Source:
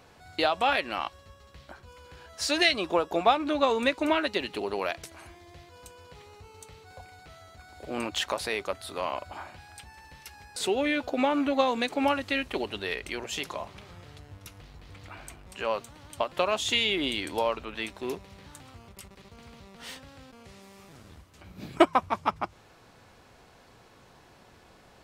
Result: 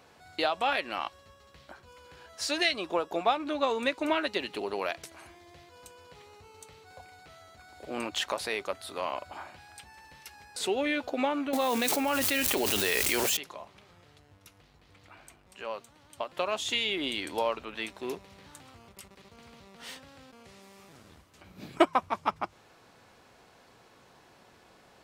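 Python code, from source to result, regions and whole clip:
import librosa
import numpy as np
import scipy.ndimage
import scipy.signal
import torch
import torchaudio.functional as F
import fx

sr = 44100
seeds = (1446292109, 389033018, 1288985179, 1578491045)

y = fx.chain(x, sr, fx.crossing_spikes(level_db=-27.5),
    fx.env_flatten(amount_pct=100), at=(11.53, 13.37))
y = fx.low_shelf(y, sr, hz=100.0, db=-11.0)
y = fx.rider(y, sr, range_db=3, speed_s=0.5)
y = y * librosa.db_to_amplitude(-4.5)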